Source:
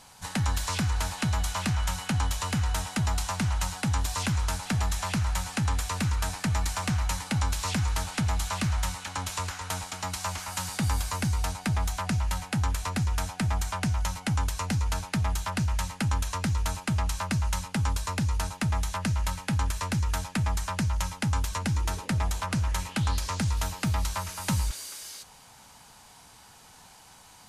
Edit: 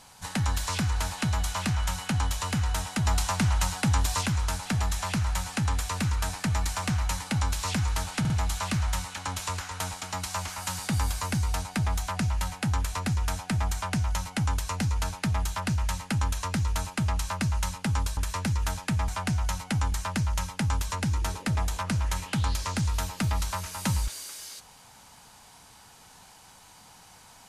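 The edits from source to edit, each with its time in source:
3.06–4.21 gain +3 dB
8.2 stutter 0.05 s, 3 plays
13.64–14.48 copy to 20.55
18.07–19.64 cut

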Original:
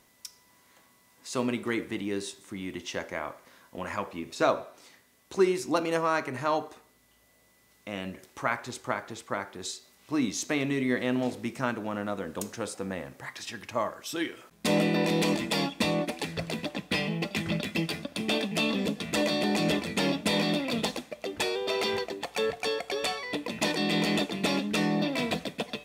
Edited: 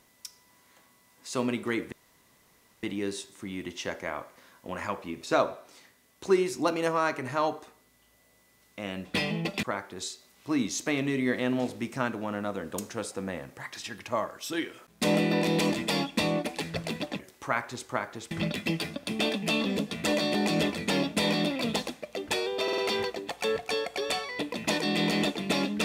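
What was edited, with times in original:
1.92 insert room tone 0.91 s
8.14–9.26 swap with 16.82–17.4
21.72 stutter 0.05 s, 4 plays

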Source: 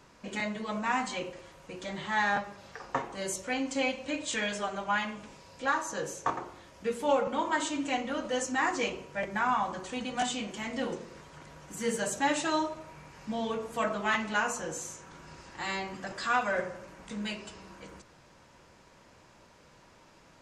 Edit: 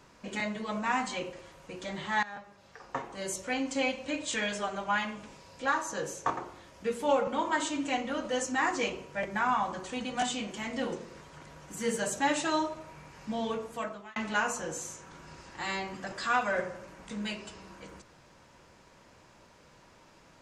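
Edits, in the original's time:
2.23–3.46 fade in, from -18.5 dB
13.52–14.16 fade out

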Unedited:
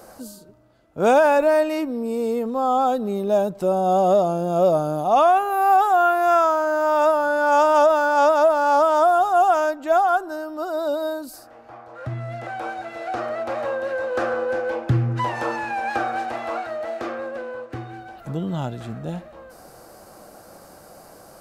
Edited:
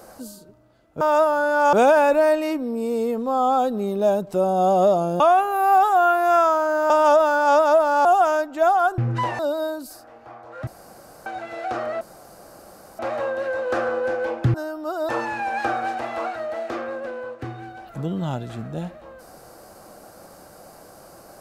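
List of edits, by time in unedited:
4.48–5.18 cut
6.88–7.6 move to 1.01
8.75–9.34 cut
10.27–10.82 swap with 14.99–15.4
12.1–12.69 room tone
13.44 insert room tone 0.98 s

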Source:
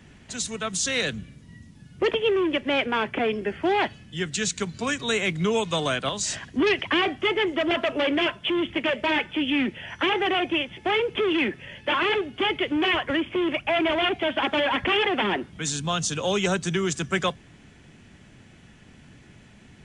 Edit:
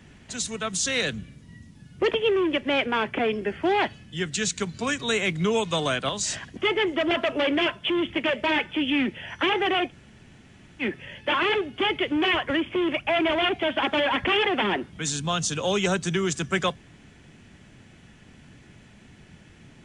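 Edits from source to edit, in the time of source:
6.57–7.17 cut
10.49–11.42 room tone, crossfade 0.06 s

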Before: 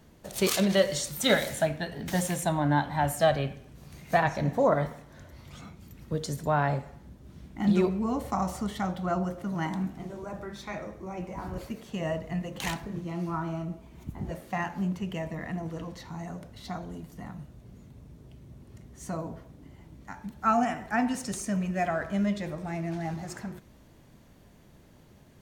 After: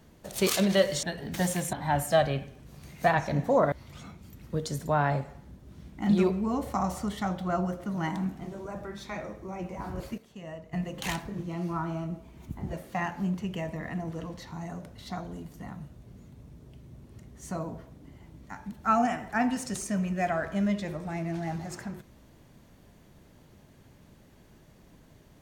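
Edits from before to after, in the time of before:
1.03–1.77 cut
2.47–2.82 cut
4.81–5.3 cut
11.76–12.31 gain -10.5 dB

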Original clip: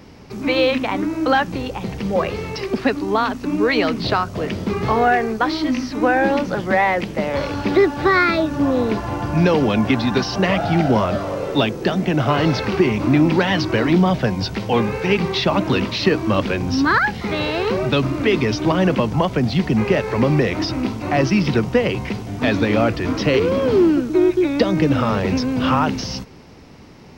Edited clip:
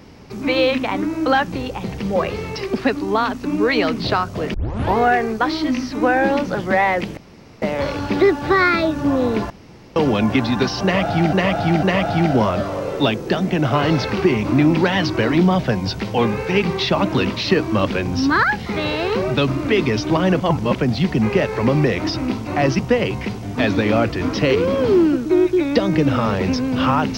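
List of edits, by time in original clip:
4.54 tape start 0.43 s
7.17 insert room tone 0.45 s
9.05–9.51 room tone
10.38–10.88 loop, 3 plays
18.95–19.31 reverse
21.34–21.63 cut

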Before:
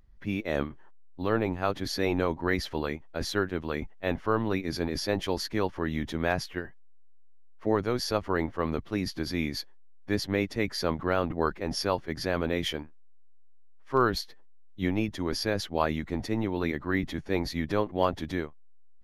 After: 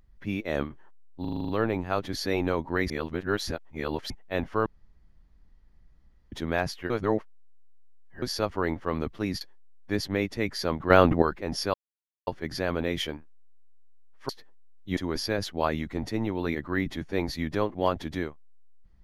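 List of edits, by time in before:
1.21 stutter 0.04 s, 8 plays
2.62–3.82 reverse
4.38–6.04 room tone
6.62–7.94 reverse
9.13–9.6 cut
11.09–11.41 gain +9.5 dB
11.93 insert silence 0.53 s
13.95–14.2 cut
14.88–15.14 cut

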